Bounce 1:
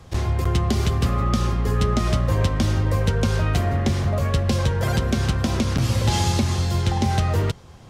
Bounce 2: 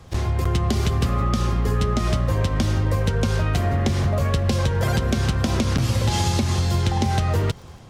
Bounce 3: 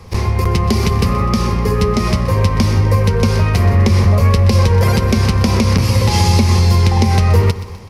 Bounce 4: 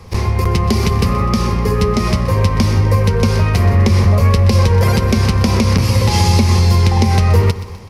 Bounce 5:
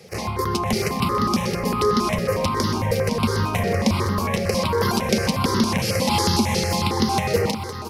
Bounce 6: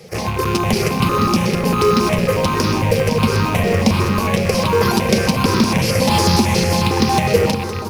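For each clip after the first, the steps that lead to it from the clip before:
automatic gain control gain up to 5 dB; surface crackle 56 per second −40 dBFS; downward compressor, threshold −17 dBFS, peak gain reduction 7 dB
EQ curve with evenly spaced ripples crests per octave 0.86, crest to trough 8 dB; repeating echo 126 ms, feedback 48%, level −15 dB; boost into a limiter +7.5 dB; level −1 dB
no processing that can be heard
high-pass filter 190 Hz 12 dB per octave; repeating echo 512 ms, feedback 34%, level −9 dB; step-sequenced phaser 11 Hz 280–2,400 Hz
loose part that buzzes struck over −29 dBFS, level −21 dBFS; in parallel at −10.5 dB: sample-rate reduction 2,600 Hz, jitter 0%; on the sum: convolution reverb RT60 1.9 s, pre-delay 6 ms, DRR 11.5 dB; level +3.5 dB

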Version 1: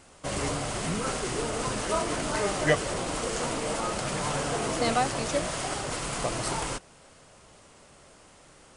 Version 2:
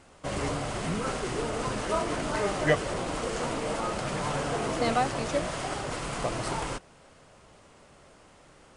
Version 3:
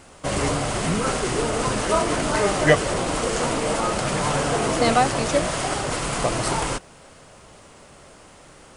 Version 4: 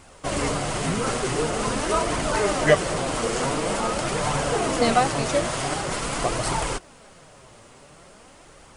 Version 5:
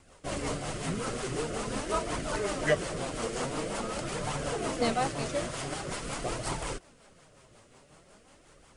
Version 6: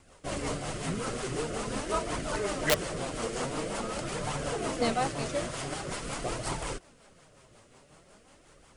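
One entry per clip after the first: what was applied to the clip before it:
high-shelf EQ 4,900 Hz −9 dB
high-shelf EQ 7,800 Hz +8 dB; level +7.5 dB
flanger 0.46 Hz, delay 0.8 ms, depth 8.1 ms, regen +51%; level +2.5 dB
rotating-speaker cabinet horn 5.5 Hz; level −6.5 dB
wrap-around overflow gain 15.5 dB

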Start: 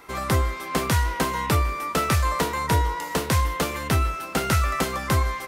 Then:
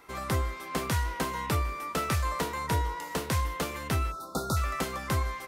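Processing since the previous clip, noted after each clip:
time-frequency box erased 0:04.11–0:04.57, 1,400–3,500 Hz
level −7 dB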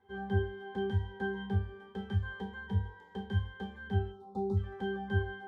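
resonances in every octave G, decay 0.28 s
level +7 dB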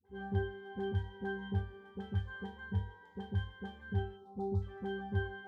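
all-pass dispersion highs, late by 55 ms, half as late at 550 Hz
level −3.5 dB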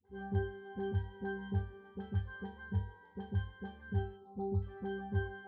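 high-frequency loss of the air 270 metres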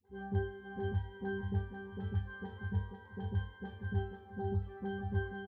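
repeating echo 492 ms, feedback 28%, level −6.5 dB

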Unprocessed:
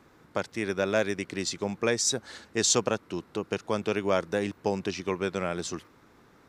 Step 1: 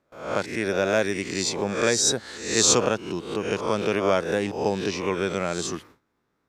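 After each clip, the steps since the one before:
peak hold with a rise ahead of every peak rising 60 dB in 0.61 s
noise gate with hold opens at −43 dBFS
level +2.5 dB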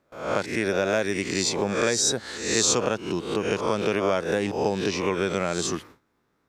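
downward compressor 2.5 to 1, threshold −24 dBFS, peak gain reduction 7 dB
level +3 dB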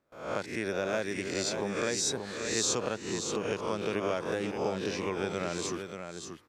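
single-tap delay 581 ms −7 dB
level −8 dB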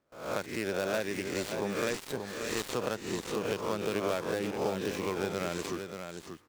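gap after every zero crossing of 0.11 ms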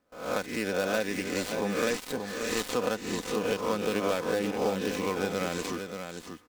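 comb filter 4 ms, depth 49%
level +2.5 dB

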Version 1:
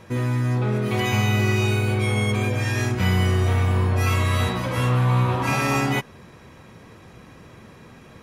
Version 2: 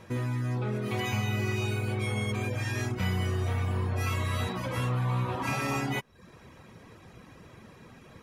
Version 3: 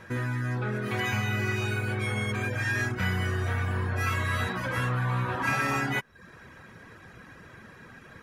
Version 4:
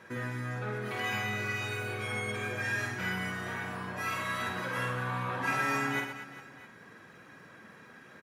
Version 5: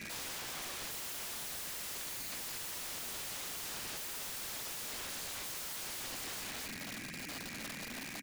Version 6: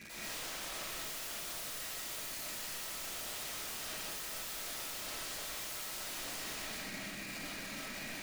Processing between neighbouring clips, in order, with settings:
reverb reduction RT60 0.54 s; downward compressor 1.5 to 1, threshold −28 dBFS, peak gain reduction 4 dB; level −4 dB
parametric band 1,600 Hz +12.5 dB 0.54 octaves
high-pass filter 170 Hz 12 dB per octave; surface crackle 100 per second −58 dBFS; on a send: reverse bouncing-ball delay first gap 50 ms, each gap 1.5×, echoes 5; on the sum: level −5 dB
drawn EQ curve 130 Hz 0 dB, 280 Hz +8 dB, 420 Hz −16 dB, 760 Hz −22 dB, 1,200 Hz −21 dB, 2,300 Hz +12 dB, 3,400 Hz −4 dB, 4,900 Hz +5 dB, 7,400 Hz +7 dB, 15,000 Hz +4 dB; downward compressor 10 to 1, threshold −39 dBFS, peak gain reduction 15.5 dB; wrap-around overflow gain 46 dB; level +8.5 dB
convolution reverb, pre-delay 90 ms, DRR −6.5 dB; level −6.5 dB

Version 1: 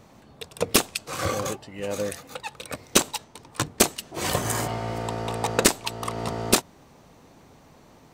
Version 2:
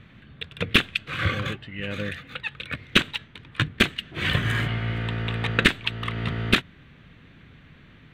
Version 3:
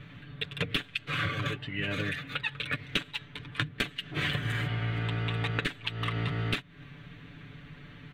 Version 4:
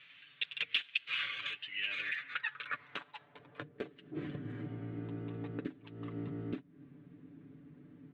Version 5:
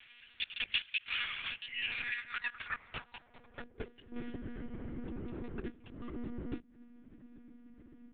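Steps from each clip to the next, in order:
drawn EQ curve 140 Hz 0 dB, 870 Hz −19 dB, 1,600 Hz +2 dB, 3,500 Hz 0 dB, 5,200 Hz −23 dB, 7,600 Hz −25 dB; level +6.5 dB
comb filter 6.9 ms, depth 82%; downward compressor 16 to 1, threshold −27 dBFS, peak gain reduction 18 dB
band-pass filter sweep 2,800 Hz → 290 Hz, 0:01.84–0:04.26; level +1 dB
one-pitch LPC vocoder at 8 kHz 240 Hz

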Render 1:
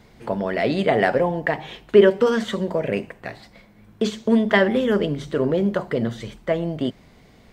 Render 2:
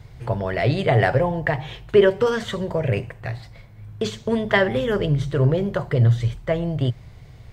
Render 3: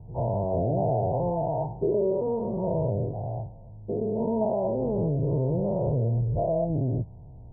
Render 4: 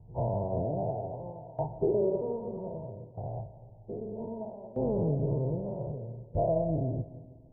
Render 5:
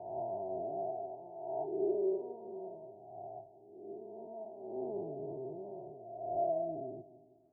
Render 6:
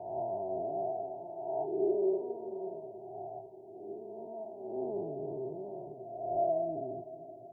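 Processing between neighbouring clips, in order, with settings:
low shelf with overshoot 160 Hz +9.5 dB, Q 3
every bin's largest magnitude spread in time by 240 ms; downward compressor 4 to 1, threshold −15 dBFS, peak gain reduction 8.5 dB; Chebyshev low-pass with heavy ripple 950 Hz, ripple 3 dB; level −5.5 dB
shaped tremolo saw down 0.63 Hz, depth 85%; convolution reverb RT60 1.9 s, pre-delay 90 ms, DRR 9.5 dB; expander for the loud parts 1.5 to 1, over −40 dBFS
peak hold with a rise ahead of every peak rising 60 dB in 1.12 s; pair of resonant band-passes 510 Hz, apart 0.86 octaves; level −3 dB
feedback delay with all-pass diffusion 501 ms, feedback 54%, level −15 dB; level +3 dB

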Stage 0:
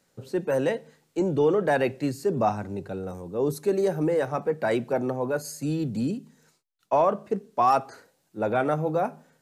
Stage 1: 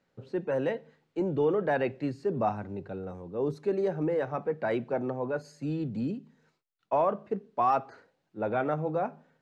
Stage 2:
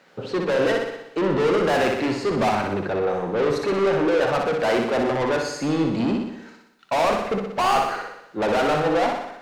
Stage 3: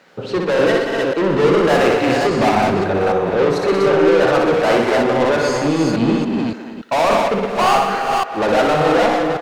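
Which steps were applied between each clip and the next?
low-pass filter 3,200 Hz 12 dB per octave; level −4.5 dB
mid-hump overdrive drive 29 dB, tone 5,100 Hz, clips at −15.5 dBFS; on a send: flutter between parallel walls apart 10.5 metres, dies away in 0.83 s
delay that plays each chunk backwards 284 ms, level −3 dB; far-end echo of a speakerphone 210 ms, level −9 dB; level +4.5 dB

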